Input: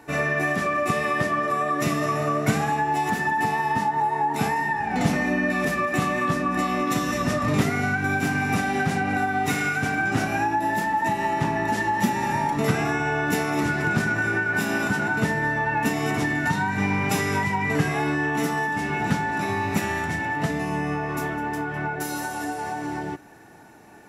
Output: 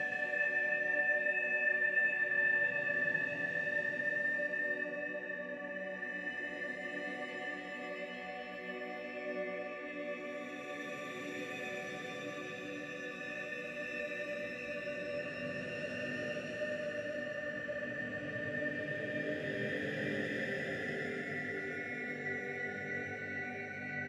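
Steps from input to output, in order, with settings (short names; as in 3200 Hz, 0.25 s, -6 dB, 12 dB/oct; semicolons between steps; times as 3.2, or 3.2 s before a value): phaser 0.11 Hz, delay 1.8 ms, feedback 60%; Paulstretch 13×, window 0.25 s, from 6.06; vowel filter e; on a send: echo 0.116 s -4.5 dB; on the sum: gain -2.5 dB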